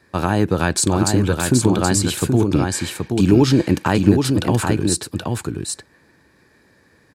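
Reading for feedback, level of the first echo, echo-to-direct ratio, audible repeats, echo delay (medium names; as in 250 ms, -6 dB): no regular repeats, -4.5 dB, -4.5 dB, 1, 776 ms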